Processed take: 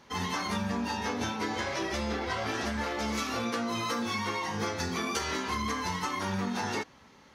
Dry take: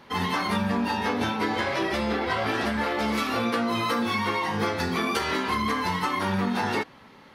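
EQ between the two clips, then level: bell 66 Hz +8 dB 0.66 oct; bell 6300 Hz +12 dB 0.58 oct; -6.5 dB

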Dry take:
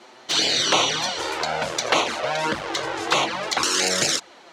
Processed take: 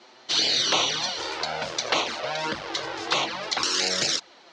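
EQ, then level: synth low-pass 5100 Hz, resonance Q 1.8; -5.5 dB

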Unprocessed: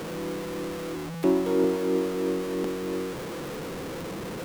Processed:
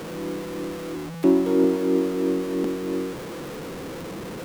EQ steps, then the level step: dynamic EQ 270 Hz, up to +7 dB, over -38 dBFS, Q 1.6; 0.0 dB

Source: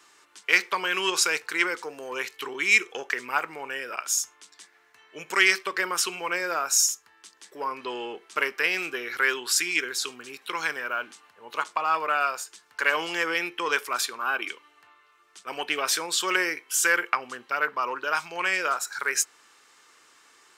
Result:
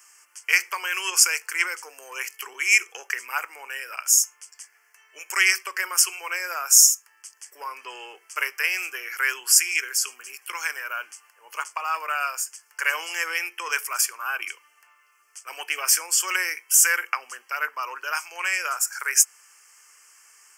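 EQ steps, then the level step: Bessel high-pass 480 Hz, order 4; Butterworth band-stop 3800 Hz, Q 1.8; tilt +4 dB/oct; -3.0 dB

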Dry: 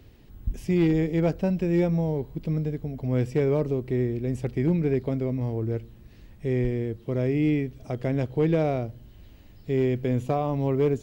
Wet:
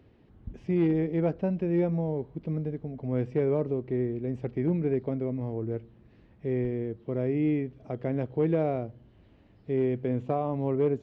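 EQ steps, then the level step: HPF 200 Hz 6 dB/oct; tape spacing loss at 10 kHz 33 dB; 0.0 dB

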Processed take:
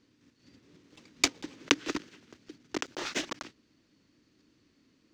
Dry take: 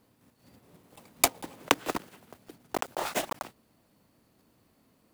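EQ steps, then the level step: EQ curve 210 Hz 0 dB, 300 Hz +8 dB, 730 Hz -10 dB, 1700 Hz +4 dB, 6200 Hz +7 dB, 11000 Hz -21 dB, 15000 Hz -19 dB; -3.5 dB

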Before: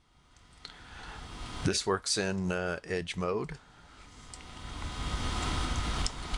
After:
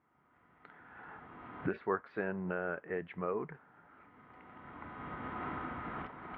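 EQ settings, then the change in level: HPF 190 Hz 12 dB/oct; ladder low-pass 2300 Hz, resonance 30%; air absorption 490 m; +4.0 dB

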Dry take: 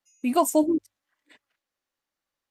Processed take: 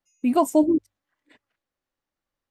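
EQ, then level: tilt -2 dB/oct; 0.0 dB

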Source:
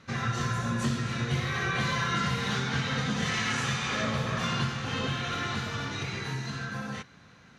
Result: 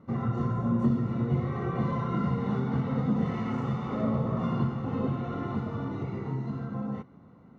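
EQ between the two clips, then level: polynomial smoothing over 65 samples; bell 260 Hz +7.5 dB 1.6 oct; -1.0 dB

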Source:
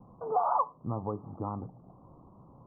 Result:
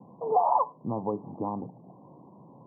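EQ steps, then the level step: HPF 140 Hz 24 dB/oct; elliptic low-pass 1000 Hz, stop band 40 dB; +5.5 dB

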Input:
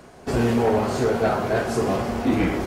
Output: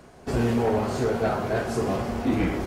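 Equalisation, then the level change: low shelf 150 Hz +4 dB; -4.0 dB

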